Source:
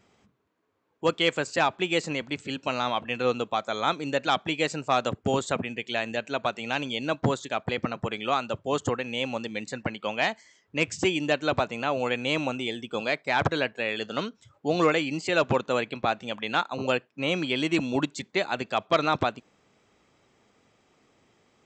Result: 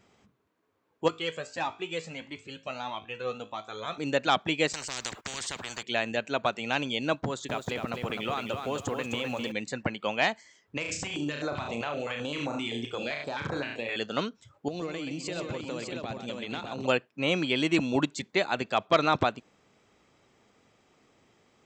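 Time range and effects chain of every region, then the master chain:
0:01.08–0:03.98: tuned comb filter 54 Hz, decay 0.38 s + flanger whose copies keep moving one way rising 1.6 Hz
0:04.73–0:05.83: noise gate −50 dBFS, range −16 dB + downward compressor 1.5 to 1, threshold −34 dBFS + every bin compressed towards the loudest bin 10 to 1
0:07.21–0:09.52: downward compressor 4 to 1, threshold −27 dBFS + feedback echo at a low word length 257 ms, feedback 35%, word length 9 bits, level −5.5 dB
0:10.77–0:13.96: flutter between parallel walls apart 5.9 metres, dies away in 0.39 s + downward compressor 12 to 1, threshold −26 dBFS + notch on a step sequencer 7.7 Hz 240–3,000 Hz
0:14.68–0:16.86: parametric band 1,300 Hz −8 dB 2.1 octaves + downward compressor 10 to 1, threshold −31 dBFS + multi-tap delay 129/413/601 ms −8.5/−19/−4.5 dB
whole clip: no processing

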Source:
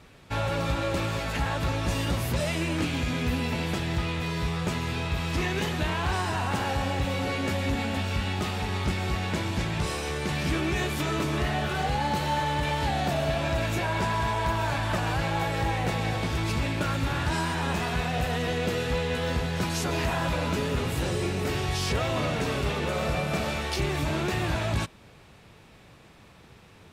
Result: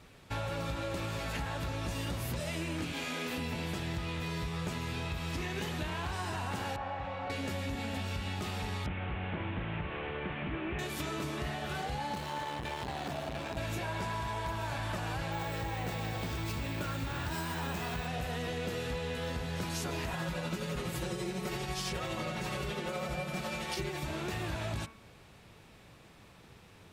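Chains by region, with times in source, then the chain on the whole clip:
0:02.92–0:03.38: high-pass filter 350 Hz + double-tracking delay 36 ms −3.5 dB
0:06.76–0:07.30: Bessel low-pass filter 1,400 Hz + low shelf with overshoot 520 Hz −10 dB, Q 1.5
0:08.86–0:10.79: linear delta modulator 16 kbit/s, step −31.5 dBFS + highs frequency-modulated by the lows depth 0.13 ms
0:12.15–0:13.57: running median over 3 samples + saturating transformer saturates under 450 Hz
0:15.32–0:18.07: parametric band 8,300 Hz +3 dB 0.39 octaves + bad sample-rate conversion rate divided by 2×, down filtered, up hold
0:20.13–0:24.07: comb filter 5.5 ms, depth 94% + amplitude tremolo 12 Hz, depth 38%
whole clip: downward compressor, threshold −29 dBFS; high-shelf EQ 9,800 Hz +4 dB; hum removal 74.4 Hz, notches 36; level −3.5 dB

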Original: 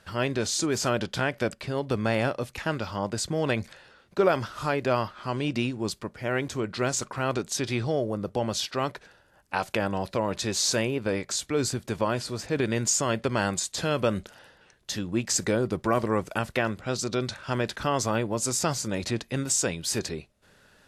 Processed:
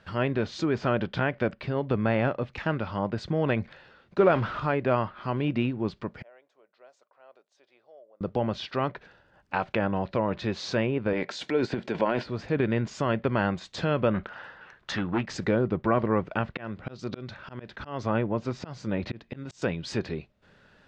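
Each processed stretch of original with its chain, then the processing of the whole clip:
0:04.19–0:04.60: converter with a step at zero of −31 dBFS + high-shelf EQ 10,000 Hz +4 dB
0:06.22–0:08.21: resonant band-pass 590 Hz, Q 2.9 + first difference
0:11.13–0:12.26: high-pass filter 250 Hz + notch filter 1,200 Hz, Q 5.4 + transient designer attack +2 dB, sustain +11 dB
0:14.14–0:15.26: gain into a clipping stage and back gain 25 dB + parametric band 1,300 Hz +13 dB 1.7 octaves
0:16.52–0:19.62: volume swells 258 ms + high-frequency loss of the air 88 metres
whole clip: low-pass filter 3,700 Hz 12 dB per octave; treble cut that deepens with the level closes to 2,800 Hz, closed at −26 dBFS; parametric band 170 Hz +3 dB 1.2 octaves

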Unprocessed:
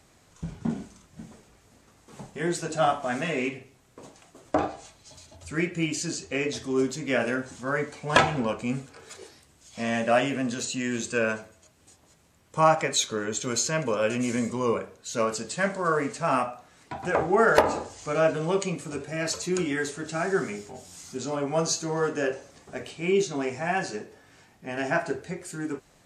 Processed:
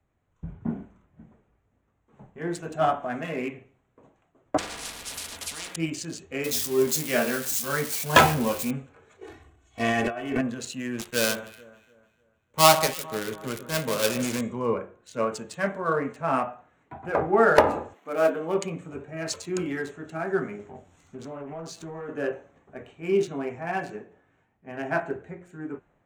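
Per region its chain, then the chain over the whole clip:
0:04.57–0:05.76: bass and treble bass −12 dB, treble +7 dB + comb filter 4.2 ms, depth 82% + every bin compressed towards the loudest bin 10 to 1
0:06.44–0:08.71: spike at every zero crossing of −21 dBFS + double-tracking delay 13 ms −5.5 dB
0:09.21–0:10.41: transient designer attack +3 dB, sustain +11 dB + comb filter 2.7 ms, depth 80% + compressor whose output falls as the input rises −26 dBFS
0:10.98–0:14.41: gap after every zero crossing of 0.15 ms + high-shelf EQ 3,200 Hz +10 dB + delay that swaps between a low-pass and a high-pass 149 ms, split 1,600 Hz, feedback 70%, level −11 dB
0:17.93–0:18.55: gap after every zero crossing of 0.074 ms + linear-phase brick-wall high-pass 170 Hz
0:20.59–0:22.09: leveller curve on the samples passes 1 + downward compressor 16 to 1, threshold −29 dBFS + highs frequency-modulated by the lows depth 0.22 ms
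whole clip: adaptive Wiener filter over 9 samples; hum removal 177.5 Hz, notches 21; multiband upward and downward expander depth 40%; level −1 dB

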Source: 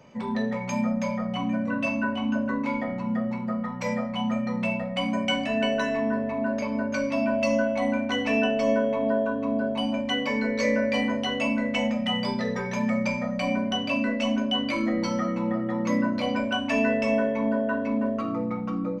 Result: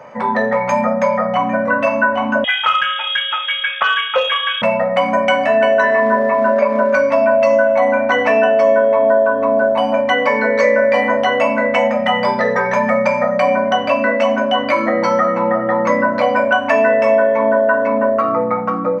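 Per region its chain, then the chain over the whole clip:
0:02.44–0:04.62: high-shelf EQ 2,000 Hz +11 dB + voice inversion scrambler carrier 3,500 Hz + saturating transformer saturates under 950 Hz
0:05.83–0:06.95: log-companded quantiser 6 bits + band-pass filter 150–3,600 Hz + comb filter 5.1 ms, depth 85%
whole clip: high-pass filter 50 Hz; flat-topped bell 990 Hz +14.5 dB 2.4 octaves; downward compressor 2.5 to 1, threshold −16 dBFS; level +4.5 dB

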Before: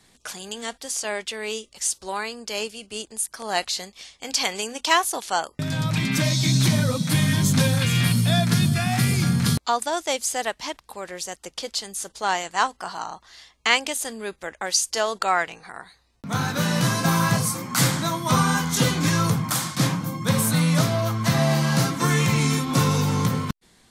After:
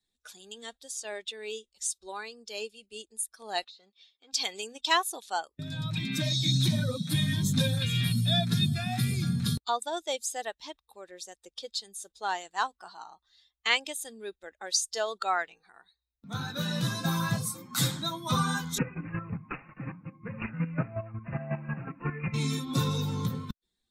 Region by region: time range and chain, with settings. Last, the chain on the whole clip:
0:03.64–0:04.33: downward compressor 8 to 1, threshold −33 dBFS + band-pass filter 160–4,600 Hz + saturating transformer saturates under 2,800 Hz
0:18.78–0:22.34: square-wave tremolo 5.5 Hz, depth 60%, duty 25% + bad sample-rate conversion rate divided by 8×, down none, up filtered
whole clip: spectral dynamics exaggerated over time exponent 1.5; parametric band 3,700 Hz +10.5 dB 0.21 octaves; level −5 dB

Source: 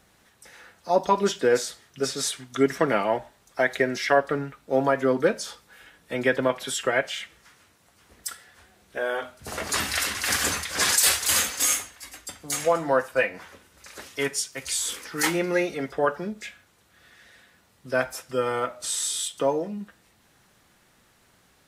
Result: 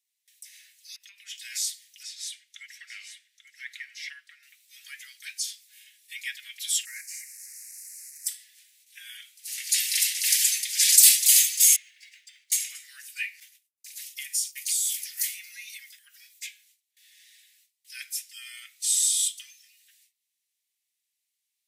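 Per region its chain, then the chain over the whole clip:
0:00.96–0:01.38: high shelf with overshoot 3,100 Hz −9.5 dB, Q 1.5 + downward compressor 10 to 1, threshold −23 dBFS
0:02.03–0:04.43: low-pass filter 1,500 Hz 6 dB per octave + single-tap delay 839 ms −10.5 dB
0:06.85–0:08.27: linear delta modulator 64 kbit/s, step −37.5 dBFS + Butterworth band-reject 3,300 Hz, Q 0.91
0:11.76–0:12.52: low-pass filter 2,200 Hz + leveller curve on the samples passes 1 + downward compressor, threshold −40 dBFS
0:13.40–0:16.47: high-shelf EQ 12,000 Hz +11 dB + downward compressor 4 to 1, threshold −28 dBFS + downward expander −42 dBFS
whole clip: noise gate with hold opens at −48 dBFS; Butterworth high-pass 2,000 Hz 48 dB per octave; spectral tilt +4 dB per octave; level −6.5 dB

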